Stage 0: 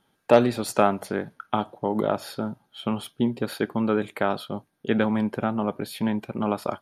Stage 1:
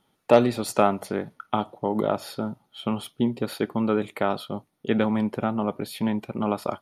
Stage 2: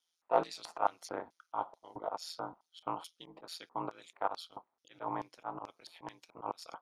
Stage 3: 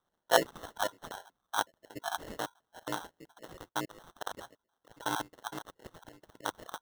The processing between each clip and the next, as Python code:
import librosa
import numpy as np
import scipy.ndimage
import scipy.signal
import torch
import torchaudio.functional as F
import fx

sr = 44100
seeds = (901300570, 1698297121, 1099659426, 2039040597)

y1 = fx.notch(x, sr, hz=1600.0, q=9.1)
y2 = y1 * np.sin(2.0 * np.pi * 84.0 * np.arange(len(y1)) / sr)
y2 = fx.filter_lfo_bandpass(y2, sr, shape='square', hz=2.3, low_hz=940.0, high_hz=5700.0, q=2.8)
y2 = fx.auto_swell(y2, sr, attack_ms=111.0)
y2 = F.gain(torch.from_numpy(y2), 4.0).numpy()
y3 = fx.spec_dropout(y2, sr, seeds[0], share_pct=47)
y3 = fx.sample_hold(y3, sr, seeds[1], rate_hz=2400.0, jitter_pct=0)
y3 = F.gain(torch.from_numpy(y3), 4.5).numpy()